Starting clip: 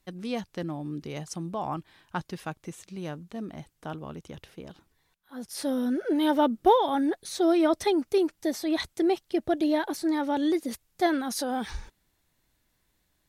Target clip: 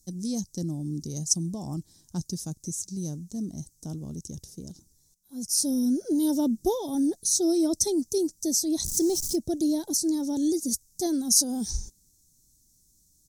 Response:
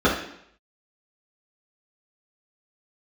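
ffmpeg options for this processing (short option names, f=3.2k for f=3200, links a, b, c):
-filter_complex "[0:a]asettb=1/sr,asplit=3[a][b][c];[a]atrim=end=8.854[d];[b]atrim=start=8.85:end=9.36,asetpts=PTS-STARTPTS,afade=t=in:d=0.004:c=qsin,afade=t=out:st=0.506:d=0.004:c=qsin,aeval=exprs='val(0)+0.5*0.0178*sgn(val(0))':c=same[e];[c]atrim=start=9.356[f];[d][e]acrossfade=d=0.004:c1=hsin:c2=qsin[g];[g][f]acrossfade=d=0.004:c1=qsin:c2=hsin,firequalizer=gain_entry='entry(200,0);entry(490,-13);entry(1300,-28);entry(2700,-28);entry(4000,-7);entry(5800,13);entry(13000,4)':delay=0.05:min_phase=1,volume=5.5dB"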